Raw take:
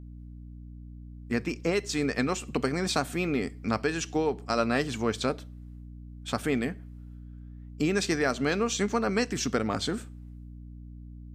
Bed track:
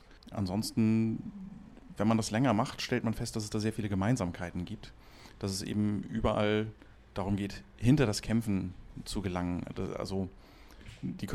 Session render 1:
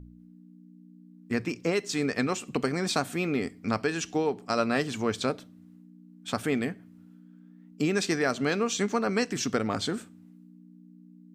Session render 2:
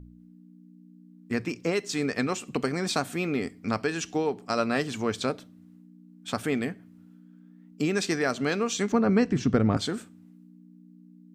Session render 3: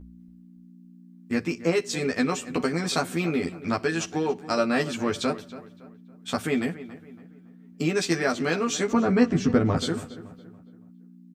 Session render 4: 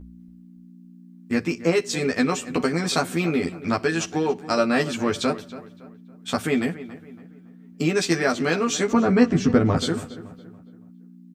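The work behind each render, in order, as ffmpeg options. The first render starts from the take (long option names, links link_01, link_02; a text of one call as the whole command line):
ffmpeg -i in.wav -af "bandreject=frequency=60:width_type=h:width=4,bandreject=frequency=120:width_type=h:width=4" out.wav
ffmpeg -i in.wav -filter_complex "[0:a]asettb=1/sr,asplit=3[link_01][link_02][link_03];[link_01]atrim=end=8.924[link_04];[link_02]atrim=start=8.92:end=9.77,asetpts=PTS-STARTPTS,afade=type=in:duration=0.004:curve=qsin,afade=type=out:start_time=0.846:duration=0.004:curve=qsin,aemphasis=mode=reproduction:type=riaa[link_05];[link_03]atrim=start=9.766[link_06];[link_04][link_05]acrossfade=duration=0.004:curve1=hsin:curve2=qsin[link_07];[link_07][link_06]acrossfade=duration=0.004:curve1=qsin:curve2=hsin" out.wav
ffmpeg -i in.wav -filter_complex "[0:a]asplit=2[link_01][link_02];[link_02]adelay=12,volume=-2dB[link_03];[link_01][link_03]amix=inputs=2:normalize=0,asplit=2[link_04][link_05];[link_05]adelay=281,lowpass=frequency=2700:poles=1,volume=-15dB,asplit=2[link_06][link_07];[link_07]adelay=281,lowpass=frequency=2700:poles=1,volume=0.39,asplit=2[link_08][link_09];[link_09]adelay=281,lowpass=frequency=2700:poles=1,volume=0.39,asplit=2[link_10][link_11];[link_11]adelay=281,lowpass=frequency=2700:poles=1,volume=0.39[link_12];[link_04][link_06][link_08][link_10][link_12]amix=inputs=5:normalize=0" out.wav
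ffmpeg -i in.wav -af "volume=3dB" out.wav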